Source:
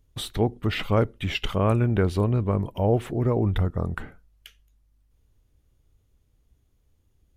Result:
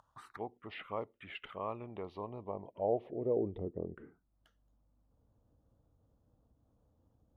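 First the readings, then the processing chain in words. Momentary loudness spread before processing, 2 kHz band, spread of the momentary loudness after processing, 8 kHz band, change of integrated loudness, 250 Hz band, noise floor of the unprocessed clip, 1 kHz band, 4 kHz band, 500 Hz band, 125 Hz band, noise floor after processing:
7 LU, -16.5 dB, 12 LU, n/a, -15.0 dB, -17.0 dB, -67 dBFS, -11.5 dB, under -20 dB, -10.5 dB, -25.5 dB, -77 dBFS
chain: envelope phaser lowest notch 380 Hz, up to 1500 Hz, full sweep at -20.5 dBFS; upward compressor, threshold -29 dBFS; band-pass sweep 1100 Hz -> 390 Hz, 2.09–3.66; gain -2.5 dB

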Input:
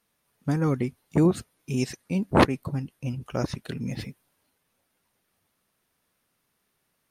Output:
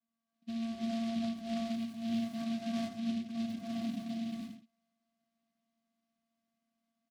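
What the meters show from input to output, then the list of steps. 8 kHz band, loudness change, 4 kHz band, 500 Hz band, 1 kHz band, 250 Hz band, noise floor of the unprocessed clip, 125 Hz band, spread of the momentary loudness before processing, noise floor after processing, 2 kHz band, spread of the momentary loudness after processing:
-12.5 dB, -10.0 dB, -6.5 dB, -15.5 dB, -14.5 dB, -6.5 dB, -75 dBFS, -22.5 dB, 13 LU, under -85 dBFS, -16.0 dB, 6 LU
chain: compressor 2:1, threshold -24 dBFS, peak gain reduction 7 dB; soft clip -25.5 dBFS, distortion -10 dB; vocoder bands 4, square 228 Hz; on a send: echo 78 ms -6 dB; on the sum: non-linear reverb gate 0.46 s rising, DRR -5.5 dB; noise-modulated delay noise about 3100 Hz, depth 0.072 ms; gain -8.5 dB

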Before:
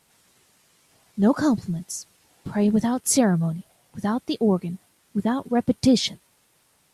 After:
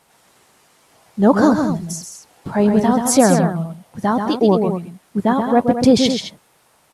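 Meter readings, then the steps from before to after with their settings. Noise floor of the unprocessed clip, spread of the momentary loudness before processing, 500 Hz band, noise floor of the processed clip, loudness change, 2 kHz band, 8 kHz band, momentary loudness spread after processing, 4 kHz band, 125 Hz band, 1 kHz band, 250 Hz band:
-64 dBFS, 15 LU, +9.5 dB, -57 dBFS, +6.5 dB, +8.0 dB, +4.0 dB, 15 LU, +5.0 dB, +5.0 dB, +11.5 dB, +6.0 dB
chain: bell 800 Hz +8 dB 2.3 oct; on a send: loudspeakers at several distances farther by 45 m -6 dB, 74 m -10 dB; on the sum: gain +2.5 dB

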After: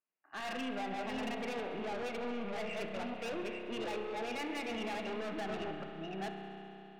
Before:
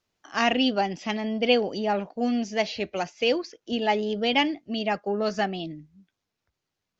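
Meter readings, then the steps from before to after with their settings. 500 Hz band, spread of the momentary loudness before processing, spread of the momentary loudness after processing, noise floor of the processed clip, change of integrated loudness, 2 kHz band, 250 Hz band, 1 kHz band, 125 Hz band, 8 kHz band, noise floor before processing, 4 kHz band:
-12.5 dB, 8 LU, 5 LU, -55 dBFS, -13.5 dB, -11.5 dB, -13.0 dB, -12.5 dB, -10.5 dB, n/a, -84 dBFS, -16.5 dB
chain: reverse delay 0.449 s, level -5 dB; low shelf 340 Hz -8.5 dB; gate -46 dBFS, range -17 dB; vocal rider 0.5 s; limiter -19 dBFS, peak gain reduction 9 dB; FFT band-pass 130–2900 Hz; soft clip -35.5 dBFS, distortion -7 dB; on a send: thinning echo 68 ms, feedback 82%, level -21.5 dB; on the sum: spring tank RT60 3.6 s, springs 31 ms, chirp 20 ms, DRR 3 dB; gain -2.5 dB

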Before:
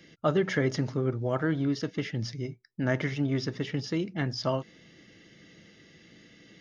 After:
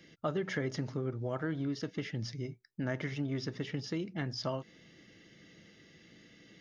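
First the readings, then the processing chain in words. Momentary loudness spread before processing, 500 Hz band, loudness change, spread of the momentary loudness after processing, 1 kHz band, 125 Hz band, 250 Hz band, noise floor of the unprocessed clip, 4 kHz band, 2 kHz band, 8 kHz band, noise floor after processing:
7 LU, -7.5 dB, -7.0 dB, 5 LU, -7.5 dB, -6.5 dB, -7.0 dB, -57 dBFS, -5.5 dB, -7.0 dB, n/a, -61 dBFS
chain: compressor 2:1, threshold -30 dBFS, peak gain reduction 6 dB; gain -3.5 dB

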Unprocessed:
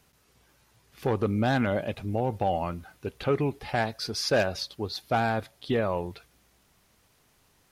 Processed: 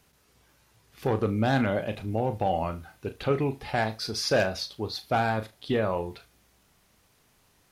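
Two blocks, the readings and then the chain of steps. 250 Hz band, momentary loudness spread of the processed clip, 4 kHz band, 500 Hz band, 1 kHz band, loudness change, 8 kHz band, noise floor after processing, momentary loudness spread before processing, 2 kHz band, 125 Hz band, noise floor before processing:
0.0 dB, 9 LU, +0.5 dB, +0.5 dB, +0.5 dB, +0.5 dB, +0.5 dB, -65 dBFS, 8 LU, +0.5 dB, +0.5 dB, -65 dBFS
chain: flutter echo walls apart 6.3 m, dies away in 0.21 s

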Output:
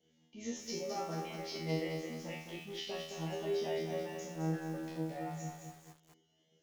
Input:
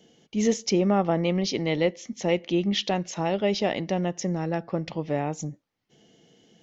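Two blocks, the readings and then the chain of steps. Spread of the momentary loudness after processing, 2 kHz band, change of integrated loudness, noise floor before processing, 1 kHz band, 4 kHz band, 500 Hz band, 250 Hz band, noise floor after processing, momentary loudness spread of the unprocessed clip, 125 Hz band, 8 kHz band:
8 LU, -12.0 dB, -13.5 dB, -73 dBFS, -13.0 dB, -13.0 dB, -13.0 dB, -15.0 dB, -74 dBFS, 8 LU, -12.0 dB, n/a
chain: resonator 80 Hz, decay 1.7 s, harmonics all, mix 100%; reverb removal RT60 0.9 s; lo-fi delay 0.215 s, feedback 55%, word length 10-bit, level -5 dB; gain +5 dB

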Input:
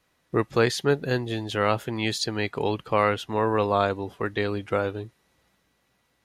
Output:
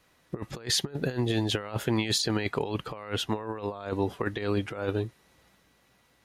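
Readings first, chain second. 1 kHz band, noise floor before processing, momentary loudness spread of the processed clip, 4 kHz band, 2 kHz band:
-10.5 dB, -70 dBFS, 9 LU, +1.5 dB, -6.5 dB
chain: negative-ratio compressor -29 dBFS, ratio -0.5

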